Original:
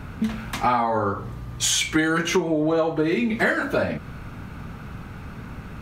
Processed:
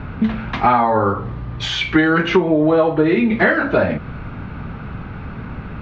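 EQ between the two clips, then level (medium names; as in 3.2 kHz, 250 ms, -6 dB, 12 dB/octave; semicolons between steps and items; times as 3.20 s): Bessel low-pass 2.7 kHz, order 6; +7.0 dB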